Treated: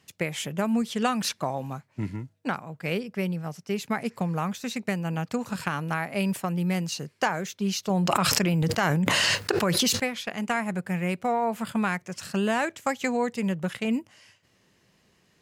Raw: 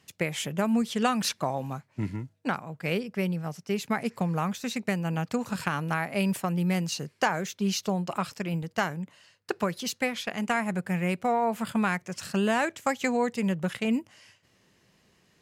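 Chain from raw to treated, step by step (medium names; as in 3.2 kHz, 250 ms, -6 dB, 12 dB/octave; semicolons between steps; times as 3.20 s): 7.90–10.00 s: level flattener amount 100%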